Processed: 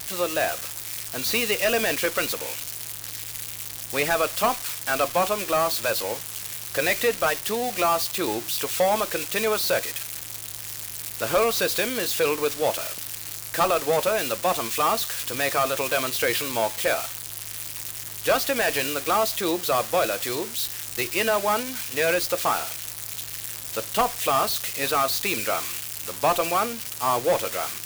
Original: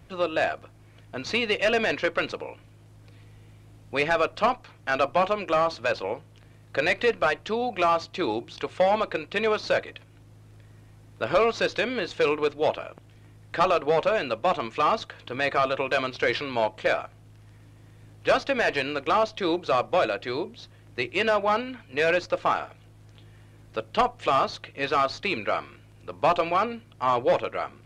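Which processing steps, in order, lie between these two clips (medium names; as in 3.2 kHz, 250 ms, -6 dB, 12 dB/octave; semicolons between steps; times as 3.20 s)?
zero-crossing glitches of -18.5 dBFS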